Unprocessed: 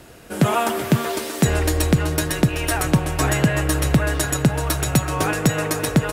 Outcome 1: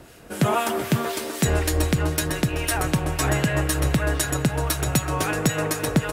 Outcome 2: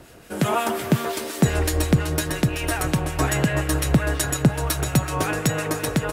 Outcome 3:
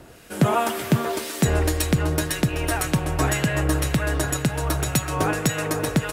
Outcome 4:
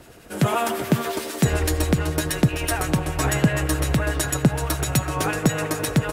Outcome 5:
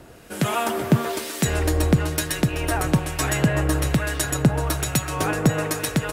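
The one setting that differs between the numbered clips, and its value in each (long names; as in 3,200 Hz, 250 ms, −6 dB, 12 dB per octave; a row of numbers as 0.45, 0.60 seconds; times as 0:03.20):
two-band tremolo in antiphase, speed: 3.9, 5.6, 1.9, 11, 1.1 Hertz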